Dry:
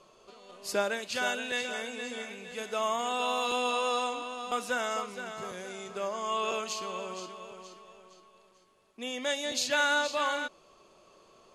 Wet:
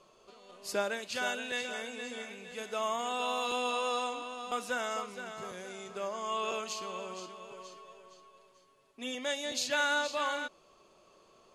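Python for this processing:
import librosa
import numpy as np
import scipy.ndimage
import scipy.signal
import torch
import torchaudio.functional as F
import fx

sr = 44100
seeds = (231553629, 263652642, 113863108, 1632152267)

y = fx.comb(x, sr, ms=7.3, depth=0.72, at=(7.5, 9.15))
y = F.gain(torch.from_numpy(y), -3.0).numpy()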